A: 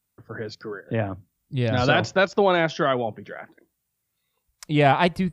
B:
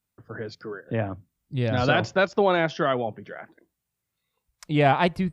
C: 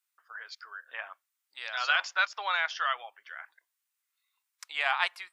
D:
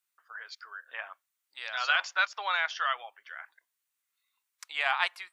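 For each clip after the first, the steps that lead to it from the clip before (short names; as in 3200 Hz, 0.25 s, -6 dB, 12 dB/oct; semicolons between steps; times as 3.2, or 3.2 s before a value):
high shelf 5100 Hz -5.5 dB; gain -1.5 dB
HPF 1100 Hz 24 dB/oct
notch 5100 Hz, Q 26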